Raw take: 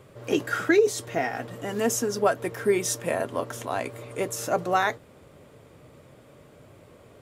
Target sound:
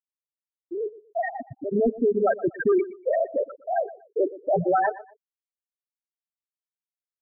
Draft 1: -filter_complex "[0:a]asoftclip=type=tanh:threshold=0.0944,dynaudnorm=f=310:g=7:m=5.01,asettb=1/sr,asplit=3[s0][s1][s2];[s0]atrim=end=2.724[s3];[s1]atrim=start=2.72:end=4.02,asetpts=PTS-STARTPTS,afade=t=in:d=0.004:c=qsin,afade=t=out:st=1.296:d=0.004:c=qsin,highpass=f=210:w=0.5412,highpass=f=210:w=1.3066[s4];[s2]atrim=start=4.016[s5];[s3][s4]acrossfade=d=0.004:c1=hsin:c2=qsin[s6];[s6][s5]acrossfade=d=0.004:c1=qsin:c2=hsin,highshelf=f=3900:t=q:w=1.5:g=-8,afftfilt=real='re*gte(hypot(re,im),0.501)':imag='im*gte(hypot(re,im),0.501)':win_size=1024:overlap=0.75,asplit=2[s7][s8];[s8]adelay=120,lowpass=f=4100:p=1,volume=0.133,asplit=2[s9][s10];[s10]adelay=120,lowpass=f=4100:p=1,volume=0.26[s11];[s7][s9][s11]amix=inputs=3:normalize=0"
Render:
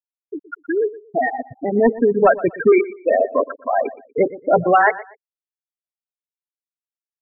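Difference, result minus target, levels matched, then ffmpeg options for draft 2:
saturation: distortion -7 dB
-filter_complex "[0:a]asoftclip=type=tanh:threshold=0.0299,dynaudnorm=f=310:g=7:m=5.01,asettb=1/sr,asplit=3[s0][s1][s2];[s0]atrim=end=2.724[s3];[s1]atrim=start=2.72:end=4.02,asetpts=PTS-STARTPTS,afade=t=in:d=0.004:c=qsin,afade=t=out:st=1.296:d=0.004:c=qsin,highpass=f=210:w=0.5412,highpass=f=210:w=1.3066[s4];[s2]atrim=start=4.016[s5];[s3][s4]acrossfade=d=0.004:c1=hsin:c2=qsin[s6];[s6][s5]acrossfade=d=0.004:c1=qsin:c2=hsin,highshelf=f=3900:t=q:w=1.5:g=-8,afftfilt=real='re*gte(hypot(re,im),0.501)':imag='im*gte(hypot(re,im),0.501)':win_size=1024:overlap=0.75,asplit=2[s7][s8];[s8]adelay=120,lowpass=f=4100:p=1,volume=0.133,asplit=2[s9][s10];[s10]adelay=120,lowpass=f=4100:p=1,volume=0.26[s11];[s7][s9][s11]amix=inputs=3:normalize=0"

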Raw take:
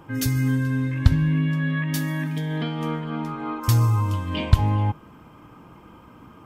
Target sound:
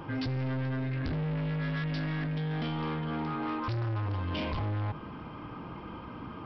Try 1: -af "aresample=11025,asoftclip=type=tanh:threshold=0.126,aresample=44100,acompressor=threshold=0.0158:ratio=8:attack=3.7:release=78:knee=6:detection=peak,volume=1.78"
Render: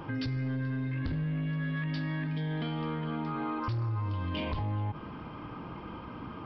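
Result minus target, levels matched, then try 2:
saturation: distortion -5 dB
-af "aresample=11025,asoftclip=type=tanh:threshold=0.0355,aresample=44100,acompressor=threshold=0.0158:ratio=8:attack=3.7:release=78:knee=6:detection=peak,volume=1.78"

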